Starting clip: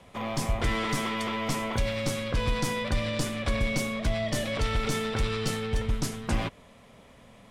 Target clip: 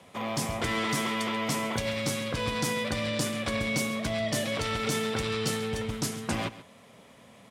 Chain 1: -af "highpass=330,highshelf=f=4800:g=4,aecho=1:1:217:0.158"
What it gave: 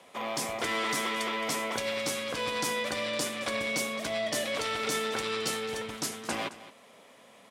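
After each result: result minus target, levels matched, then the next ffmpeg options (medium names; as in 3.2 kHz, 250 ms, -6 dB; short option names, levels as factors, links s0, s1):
125 Hz band -12.0 dB; echo 81 ms late
-af "highpass=120,highshelf=f=4800:g=4,aecho=1:1:217:0.158"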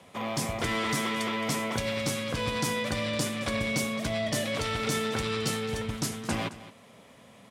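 echo 81 ms late
-af "highpass=120,highshelf=f=4800:g=4,aecho=1:1:136:0.158"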